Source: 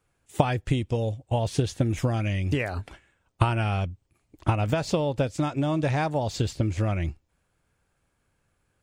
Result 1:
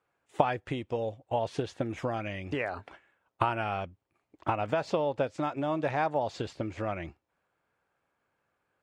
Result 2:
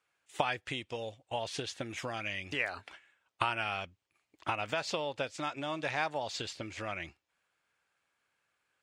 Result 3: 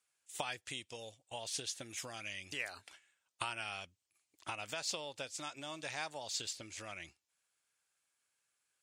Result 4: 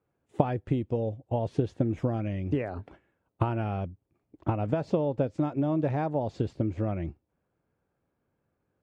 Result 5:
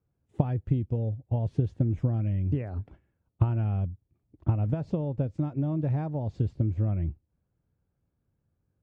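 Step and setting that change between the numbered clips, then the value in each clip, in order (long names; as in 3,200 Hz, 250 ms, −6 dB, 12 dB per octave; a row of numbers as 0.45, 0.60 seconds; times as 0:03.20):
resonant band-pass, frequency: 940, 2,500, 7,400, 330, 120 Hertz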